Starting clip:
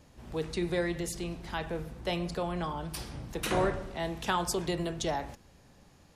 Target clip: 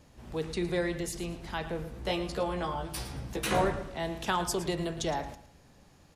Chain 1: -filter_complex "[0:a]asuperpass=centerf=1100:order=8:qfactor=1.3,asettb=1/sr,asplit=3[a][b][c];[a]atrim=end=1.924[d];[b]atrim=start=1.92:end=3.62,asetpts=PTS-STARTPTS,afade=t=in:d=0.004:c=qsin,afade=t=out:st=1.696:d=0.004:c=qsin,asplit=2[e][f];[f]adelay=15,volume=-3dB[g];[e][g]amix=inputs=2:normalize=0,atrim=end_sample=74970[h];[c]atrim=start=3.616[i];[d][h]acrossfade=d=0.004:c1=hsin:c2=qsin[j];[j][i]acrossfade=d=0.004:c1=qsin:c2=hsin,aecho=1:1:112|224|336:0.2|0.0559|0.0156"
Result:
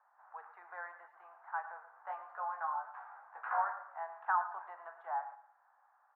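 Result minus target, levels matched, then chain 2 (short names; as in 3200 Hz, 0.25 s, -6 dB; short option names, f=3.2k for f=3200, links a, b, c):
1000 Hz band +6.0 dB
-filter_complex "[0:a]asettb=1/sr,asplit=3[a][b][c];[a]atrim=end=1.924[d];[b]atrim=start=1.92:end=3.62,asetpts=PTS-STARTPTS,afade=t=in:d=0.004:c=qsin,afade=t=out:st=1.696:d=0.004:c=qsin,asplit=2[e][f];[f]adelay=15,volume=-3dB[g];[e][g]amix=inputs=2:normalize=0,atrim=end_sample=74970[h];[c]atrim=start=3.616[i];[d][h]acrossfade=d=0.004:c1=hsin:c2=qsin[j];[j][i]acrossfade=d=0.004:c1=qsin:c2=hsin,aecho=1:1:112|224|336:0.2|0.0559|0.0156"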